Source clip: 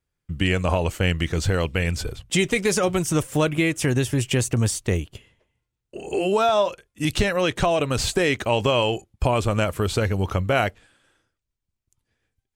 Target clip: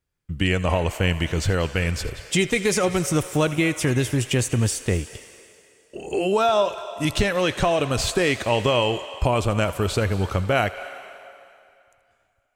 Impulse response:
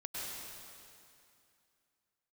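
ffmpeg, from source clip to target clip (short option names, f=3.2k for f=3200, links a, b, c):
-filter_complex "[0:a]asplit=2[a][b];[b]highpass=630[c];[1:a]atrim=start_sample=2205,adelay=81[d];[c][d]afir=irnorm=-1:irlink=0,volume=-11.5dB[e];[a][e]amix=inputs=2:normalize=0"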